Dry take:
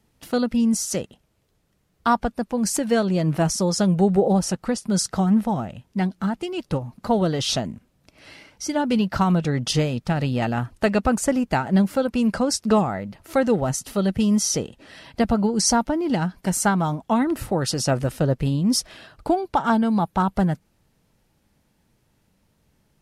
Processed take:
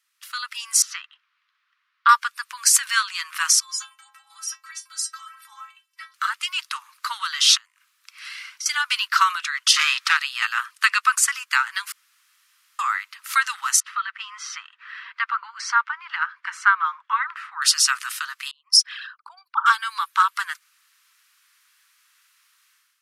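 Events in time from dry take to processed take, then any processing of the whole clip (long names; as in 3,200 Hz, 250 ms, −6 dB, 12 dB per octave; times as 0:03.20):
0:00.82–0:02.09: high-frequency loss of the air 320 metres
0:03.60–0:06.14: stiff-string resonator 96 Hz, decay 0.72 s, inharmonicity 0.03
0:07.57–0:08.66: downward compressor, threshold −42 dBFS
0:09.76–0:10.17: mid-hump overdrive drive 19 dB, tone 3,600 Hz, clips at −9.5 dBFS
0:11.92–0:12.79: fill with room tone
0:13.80–0:17.62: Chebyshev low-pass filter 1,600 Hz
0:18.51–0:19.66: spectral envelope exaggerated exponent 2
whole clip: Butterworth high-pass 1,100 Hz 72 dB per octave; automatic gain control gain up to 12 dB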